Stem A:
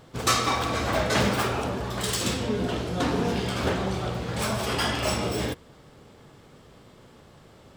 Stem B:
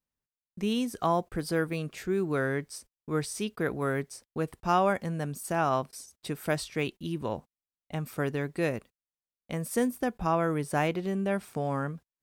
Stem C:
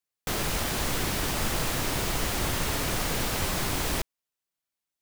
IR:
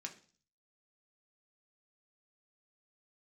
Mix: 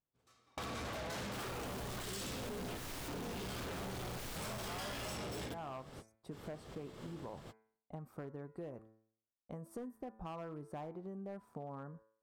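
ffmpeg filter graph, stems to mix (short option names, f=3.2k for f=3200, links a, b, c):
-filter_complex "[0:a]asoftclip=type=tanh:threshold=-14.5dB,volume=3dB[a];[1:a]highshelf=f=1.6k:t=q:w=1.5:g=-13.5,volume=-8dB,asplit=2[b][c];[2:a]adelay=1050,volume=-4.5dB[d];[c]apad=whole_len=342281[e];[a][e]sidechaingate=range=-33dB:threshold=-57dB:ratio=16:detection=peak[f];[f][d]amix=inputs=2:normalize=0,agate=range=-16dB:threshold=-49dB:ratio=16:detection=peak,alimiter=limit=-17.5dB:level=0:latency=1:release=192,volume=0dB[g];[b][g]amix=inputs=2:normalize=0,bandreject=f=110.4:t=h:w=4,bandreject=f=220.8:t=h:w=4,bandreject=f=331.2:t=h:w=4,bandreject=f=441.6:t=h:w=4,bandreject=f=552:t=h:w=4,bandreject=f=662.4:t=h:w=4,bandreject=f=772.8:t=h:w=4,bandreject=f=883.2:t=h:w=4,bandreject=f=993.6:t=h:w=4,bandreject=f=1.104k:t=h:w=4,bandreject=f=1.2144k:t=h:w=4,bandreject=f=1.3248k:t=h:w=4,bandreject=f=1.4352k:t=h:w=4,bandreject=f=1.5456k:t=h:w=4,bandreject=f=1.656k:t=h:w=4,bandreject=f=1.7664k:t=h:w=4,bandreject=f=1.8768k:t=h:w=4,bandreject=f=1.9872k:t=h:w=4,bandreject=f=2.0976k:t=h:w=4,bandreject=f=2.208k:t=h:w=4,bandreject=f=2.3184k:t=h:w=4,bandreject=f=2.4288k:t=h:w=4,bandreject=f=2.5392k:t=h:w=4,asoftclip=type=hard:threshold=-29.5dB,acompressor=threshold=-43dB:ratio=6"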